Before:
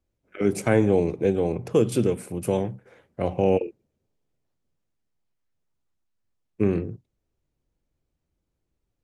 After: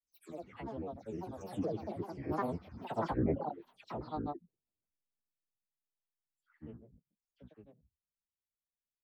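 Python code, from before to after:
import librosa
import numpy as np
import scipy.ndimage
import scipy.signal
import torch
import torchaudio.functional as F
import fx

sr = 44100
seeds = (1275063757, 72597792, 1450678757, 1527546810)

p1 = fx.spec_delay(x, sr, highs='early', ms=307)
p2 = fx.doppler_pass(p1, sr, speed_mps=23, closest_m=7.0, pass_at_s=2.82)
p3 = fx.env_lowpass_down(p2, sr, base_hz=2600.0, full_db=-29.5)
p4 = p3 + fx.echo_single(p3, sr, ms=882, db=-7.0, dry=0)
p5 = fx.granulator(p4, sr, seeds[0], grain_ms=100.0, per_s=20.0, spray_ms=100.0, spread_st=12)
y = p5 * librosa.db_to_amplitude(-4.0)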